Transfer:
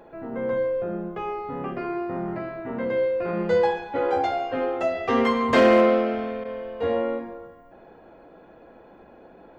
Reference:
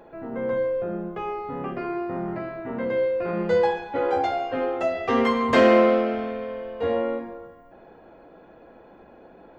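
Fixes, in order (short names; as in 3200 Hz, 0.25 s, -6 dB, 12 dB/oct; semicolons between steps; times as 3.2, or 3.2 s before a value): clip repair -9 dBFS; interpolate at 6.44, 10 ms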